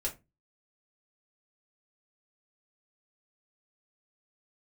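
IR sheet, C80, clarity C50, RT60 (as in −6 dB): 23.0 dB, 15.0 dB, 0.25 s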